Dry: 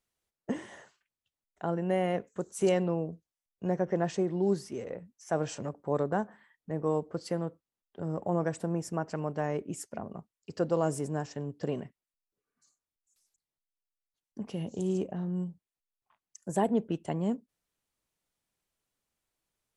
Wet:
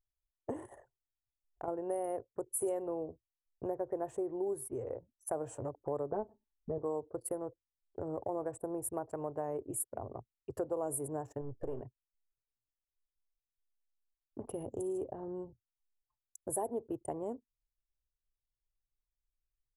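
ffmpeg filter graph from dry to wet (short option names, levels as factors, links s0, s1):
-filter_complex "[0:a]asettb=1/sr,asplit=3[s0][s1][s2];[s0]atrim=end=0.654[s3];[s1]atrim=start=0.65:end=1.68,asetpts=PTS-STARTPTS,afade=t=in:d=0.004:c=qsin,afade=t=out:st=1.026:d=0.004:c=qsin,bass=f=250:g=2,treble=f=4000:g=6,acompressor=threshold=0.00316:ratio=1.5:attack=3.2:release=140:knee=1:detection=peak[s4];[s2]atrim=start=1.676[s5];[s3][s4]acrossfade=d=0.004:c1=hsin:c2=qsin[s6];[s6][s5]acrossfade=d=0.004:c1=qsin:c2=hsin,asettb=1/sr,asplit=3[s7][s8][s9];[s7]atrim=end=6.124[s10];[s8]atrim=start=6.12:end=6.78,asetpts=PTS-STARTPTS,afade=t=in:d=0.004:c=qsin,afade=t=out:st=0.656:d=0.004:c=qsin,tiltshelf=f=660:g=7,aecho=1:1:4.6:0.67,atrim=end_sample=29106,adynamicsmooth=sensitivity=2.5:basefreq=2100[s11];[s9]atrim=start=6.776[s12];[s10][s11]acrossfade=d=0.004:c1=hsin:c2=qsin[s13];[s13][s12]acrossfade=d=0.004:c1=qsin:c2=hsin,asettb=1/sr,asplit=3[s14][s15][s16];[s14]atrim=end=11.414[s17];[s15]atrim=start=11.41:end=11.81,asetpts=PTS-STARTPTS,afade=t=in:d=0.004:c=qsin,afade=t=out:st=0.396:d=0.004:c=qsin,aeval=exprs='if(lt(val(0),0),0.447*val(0),val(0))':c=same,highshelf=f=6900:g=-6,asplit=2[s18][s19];[s19]adelay=37,volume=0.211[s20];[s18][s20]amix=inputs=2:normalize=0,atrim=end_sample=17640[s21];[s16]atrim=start=11.806[s22];[s17][s21]acrossfade=d=0.004:c1=hsin:c2=qsin[s23];[s23][s22]acrossfade=d=0.004:c1=qsin:c2=hsin,anlmdn=0.01,firequalizer=gain_entry='entry(120,0);entry(180,-27);entry(250,-10);entry(360,-4);entry(550,-4);entry(910,-4);entry(1400,-13);entry(2100,-20);entry(5100,-29);entry(10000,13)':delay=0.05:min_phase=1,acompressor=threshold=0.00316:ratio=2.5,volume=3.35"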